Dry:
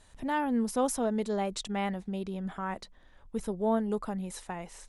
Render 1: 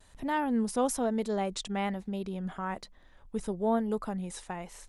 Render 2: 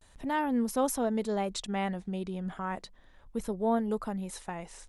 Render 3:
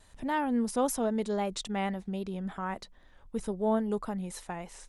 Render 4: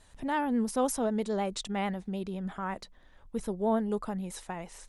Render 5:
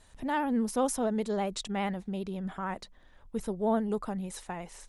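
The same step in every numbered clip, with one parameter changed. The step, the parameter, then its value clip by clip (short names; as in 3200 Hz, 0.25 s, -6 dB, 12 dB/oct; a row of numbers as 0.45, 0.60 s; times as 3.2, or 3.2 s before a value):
vibrato, rate: 1.1, 0.34, 3.7, 9.3, 15 Hz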